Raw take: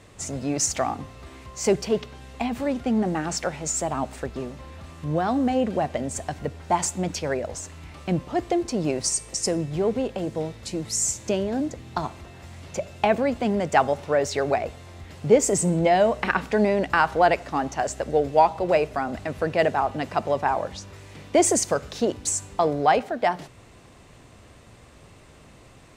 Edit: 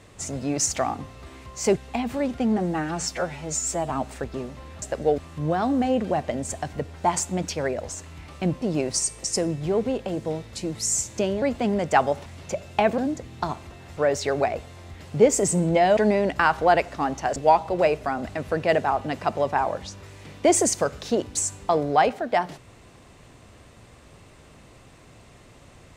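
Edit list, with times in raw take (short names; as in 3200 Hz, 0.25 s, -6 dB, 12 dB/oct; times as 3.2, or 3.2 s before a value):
1.77–2.23 cut
3.04–3.92 stretch 1.5×
8.28–8.72 cut
11.52–12.51 swap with 13.23–14.07
16.07–16.51 cut
17.9–18.26 move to 4.84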